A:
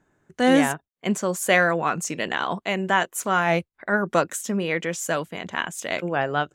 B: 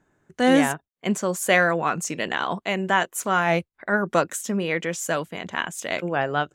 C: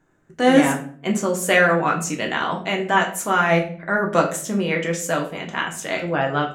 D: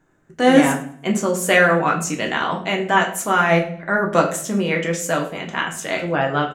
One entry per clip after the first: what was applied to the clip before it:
no processing that can be heard
rectangular room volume 51 cubic metres, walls mixed, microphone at 0.57 metres
repeating echo 105 ms, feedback 38%, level −22 dB; level +1.5 dB

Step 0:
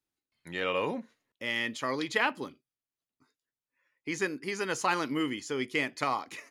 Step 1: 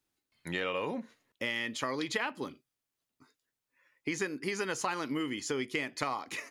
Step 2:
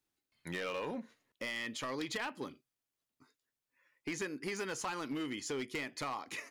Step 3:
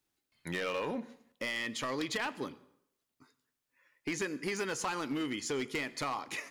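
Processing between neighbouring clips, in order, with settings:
downward compressor 5 to 1, threshold −37 dBFS, peak gain reduction 13.5 dB; level +6 dB
gain into a clipping stage and back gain 29 dB; level −3.5 dB
dense smooth reverb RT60 0.72 s, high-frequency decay 0.75×, pre-delay 80 ms, DRR 19 dB; level +3.5 dB

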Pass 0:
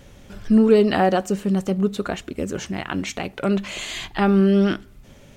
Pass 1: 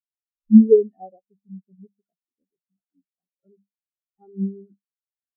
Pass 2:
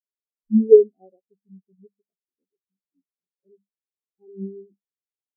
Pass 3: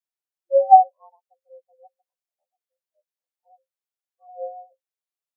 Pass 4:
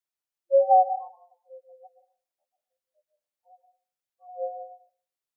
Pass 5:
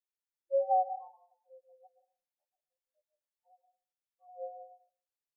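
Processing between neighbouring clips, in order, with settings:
mains-hum notches 50/100/150/200 Hz; every bin expanded away from the loudest bin 4 to 1; level +3.5 dB
low-pass with resonance 420 Hz, resonance Q 4.9; level −10 dB
frequency shifter +330 Hz
brickwall limiter −12 dBFS, peak gain reduction 11 dB; convolution reverb RT60 0.40 s, pre-delay 110 ms, DRR 9.5 dB
tuned comb filter 880 Hz, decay 0.16 s, mix 70%

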